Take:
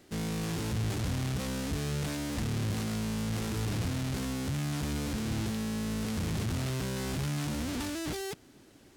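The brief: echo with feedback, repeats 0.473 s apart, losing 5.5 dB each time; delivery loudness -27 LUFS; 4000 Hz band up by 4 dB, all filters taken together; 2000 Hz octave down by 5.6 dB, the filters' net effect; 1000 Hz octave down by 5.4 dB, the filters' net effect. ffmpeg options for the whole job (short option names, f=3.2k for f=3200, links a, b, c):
-af "equalizer=f=1k:t=o:g=-5.5,equalizer=f=2k:t=o:g=-8,equalizer=f=4k:t=o:g=7.5,aecho=1:1:473|946|1419|1892|2365|2838|3311:0.531|0.281|0.149|0.079|0.0419|0.0222|0.0118,volume=5dB"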